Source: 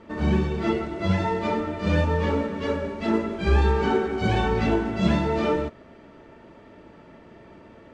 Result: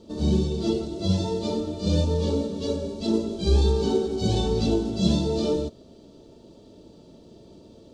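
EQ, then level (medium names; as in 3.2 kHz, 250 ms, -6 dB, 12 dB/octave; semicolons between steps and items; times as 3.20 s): FFT filter 480 Hz 0 dB, 2 kHz -23 dB, 3.9 kHz +9 dB; 0.0 dB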